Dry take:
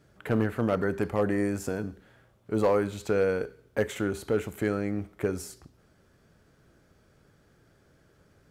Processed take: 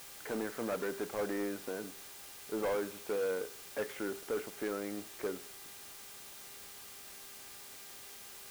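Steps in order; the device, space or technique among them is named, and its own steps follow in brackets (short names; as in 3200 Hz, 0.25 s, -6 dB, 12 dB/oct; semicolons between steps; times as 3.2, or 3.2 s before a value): aircraft radio (BPF 310–2400 Hz; hard clip -24.5 dBFS, distortion -11 dB; buzz 400 Hz, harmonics 29, -53 dBFS -1 dB/oct; white noise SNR 11 dB); gain -5.5 dB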